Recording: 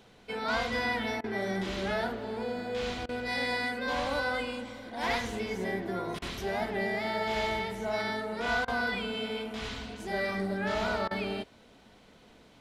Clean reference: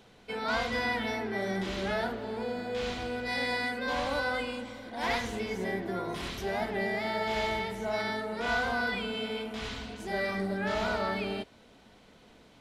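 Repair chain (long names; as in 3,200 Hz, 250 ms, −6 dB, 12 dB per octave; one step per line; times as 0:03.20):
repair the gap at 0:01.21/0:03.06/0:06.19/0:08.65/0:11.08, 28 ms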